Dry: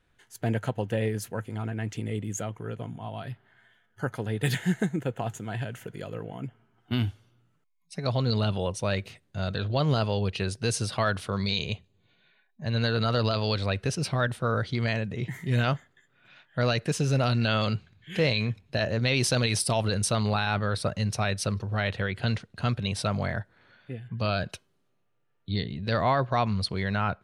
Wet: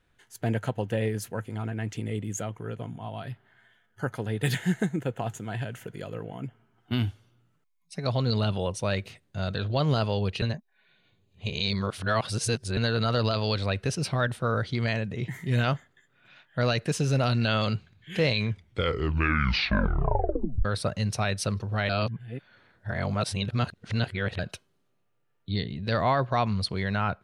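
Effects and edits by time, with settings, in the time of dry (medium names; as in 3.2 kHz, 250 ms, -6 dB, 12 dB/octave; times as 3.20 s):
10.42–12.77 s: reverse
18.37 s: tape stop 2.28 s
21.89–24.39 s: reverse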